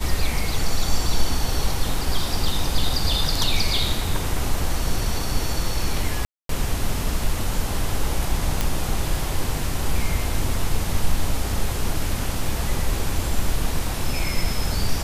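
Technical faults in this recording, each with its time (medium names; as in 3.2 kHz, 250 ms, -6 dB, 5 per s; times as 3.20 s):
6.25–6.49 s: dropout 243 ms
8.61 s: pop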